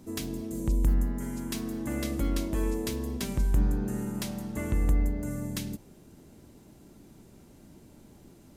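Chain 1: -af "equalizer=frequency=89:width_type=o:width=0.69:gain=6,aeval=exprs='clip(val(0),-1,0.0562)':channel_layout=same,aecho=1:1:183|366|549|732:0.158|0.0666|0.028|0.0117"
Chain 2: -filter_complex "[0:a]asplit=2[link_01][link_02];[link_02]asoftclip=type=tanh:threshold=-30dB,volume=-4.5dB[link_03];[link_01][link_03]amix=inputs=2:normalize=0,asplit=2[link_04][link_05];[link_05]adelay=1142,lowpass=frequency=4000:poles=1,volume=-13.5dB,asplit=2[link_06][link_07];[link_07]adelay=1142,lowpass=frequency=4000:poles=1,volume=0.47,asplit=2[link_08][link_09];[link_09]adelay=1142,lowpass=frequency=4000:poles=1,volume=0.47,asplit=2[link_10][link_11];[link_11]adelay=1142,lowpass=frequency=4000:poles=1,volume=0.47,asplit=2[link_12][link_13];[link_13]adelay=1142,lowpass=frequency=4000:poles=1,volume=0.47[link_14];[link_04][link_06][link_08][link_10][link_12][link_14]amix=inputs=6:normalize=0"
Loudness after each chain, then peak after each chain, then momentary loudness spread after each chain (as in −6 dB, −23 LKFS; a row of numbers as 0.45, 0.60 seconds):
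−31.5, −29.0 LKFS; −12.5, −13.0 dBFS; 7, 20 LU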